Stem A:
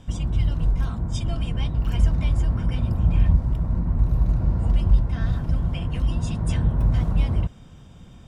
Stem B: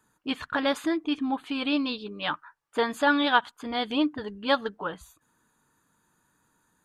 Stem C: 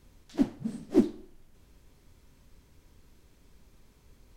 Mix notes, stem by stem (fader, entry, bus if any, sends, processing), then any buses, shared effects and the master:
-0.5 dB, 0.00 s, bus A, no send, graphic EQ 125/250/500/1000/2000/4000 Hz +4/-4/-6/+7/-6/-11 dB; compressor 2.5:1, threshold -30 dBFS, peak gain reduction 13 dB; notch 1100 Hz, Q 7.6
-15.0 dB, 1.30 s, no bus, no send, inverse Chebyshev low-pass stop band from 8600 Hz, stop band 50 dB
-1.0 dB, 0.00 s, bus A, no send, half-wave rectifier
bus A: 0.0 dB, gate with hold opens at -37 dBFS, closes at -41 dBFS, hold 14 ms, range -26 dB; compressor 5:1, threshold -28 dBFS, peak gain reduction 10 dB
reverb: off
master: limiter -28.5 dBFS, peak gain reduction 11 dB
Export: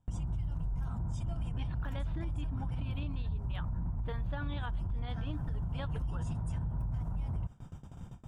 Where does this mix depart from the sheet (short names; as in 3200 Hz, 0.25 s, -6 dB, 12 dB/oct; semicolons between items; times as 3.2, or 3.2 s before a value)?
stem A: missing compressor 2.5:1, threshold -30 dBFS, peak gain reduction 13 dB; stem C: muted